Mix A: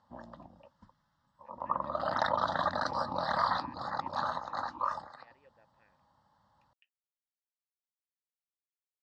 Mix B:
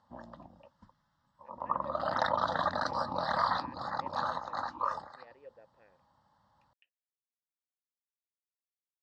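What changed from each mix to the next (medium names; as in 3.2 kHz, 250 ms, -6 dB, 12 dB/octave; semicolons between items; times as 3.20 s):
speech: add peaking EQ 470 Hz +13 dB 1.2 oct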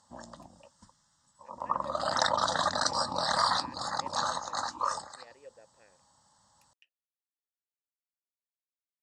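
master: remove distance through air 340 m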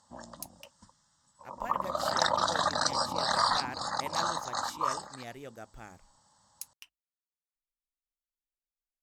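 speech: remove vowel filter e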